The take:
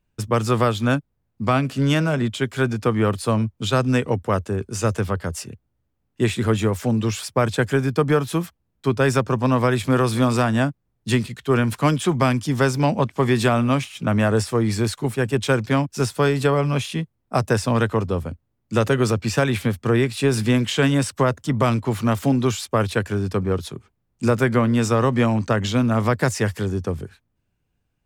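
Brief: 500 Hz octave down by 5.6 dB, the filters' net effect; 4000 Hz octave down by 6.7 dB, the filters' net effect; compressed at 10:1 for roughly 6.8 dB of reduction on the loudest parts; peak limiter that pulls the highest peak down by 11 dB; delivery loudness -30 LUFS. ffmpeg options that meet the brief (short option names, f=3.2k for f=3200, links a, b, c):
-af "equalizer=f=500:t=o:g=-7,equalizer=f=4k:t=o:g=-9,acompressor=threshold=-23dB:ratio=10,volume=2.5dB,alimiter=limit=-21dB:level=0:latency=1"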